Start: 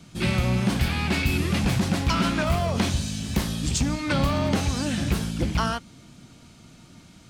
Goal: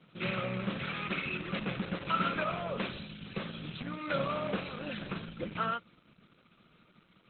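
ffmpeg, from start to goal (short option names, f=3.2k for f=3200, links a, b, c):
-af "highpass=f=150:w=0.5412,highpass=f=150:w=1.3066,equalizer=f=260:t=q:w=4:g=-9,equalizer=f=530:t=q:w=4:g=8,equalizer=f=830:t=q:w=4:g=-8,equalizer=f=1.3k:t=q:w=4:g=9,equalizer=f=2.5k:t=q:w=4:g=5,lowpass=f=4.6k:w=0.5412,lowpass=f=4.6k:w=1.3066,volume=-8.5dB" -ar 48000 -c:a libopus -b:a 8k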